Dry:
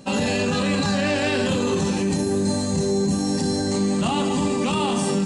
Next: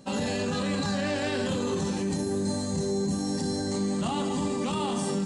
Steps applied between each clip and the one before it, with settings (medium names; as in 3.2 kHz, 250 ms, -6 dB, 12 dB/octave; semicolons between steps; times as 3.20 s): peaking EQ 2.6 kHz -6 dB 0.25 oct; trim -6.5 dB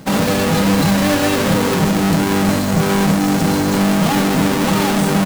square wave that keeps the level; comb 6.3 ms, depth 38%; trim +8.5 dB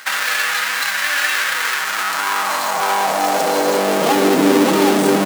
peak limiter -17 dBFS, peak gain reduction 9 dB; high-pass sweep 1.6 kHz -> 330 Hz, 1.75–4.46 s; trim +7 dB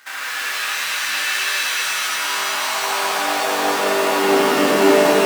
flange 1.9 Hz, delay 6.7 ms, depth 1.8 ms, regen -66%; pitch-shifted reverb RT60 3.9 s, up +7 st, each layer -2 dB, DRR -7 dB; trim -8.5 dB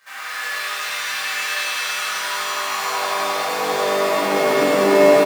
on a send: delay 101 ms -3.5 dB; on the sum: simulated room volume 700 m³, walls furnished, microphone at 5.8 m; trim -12 dB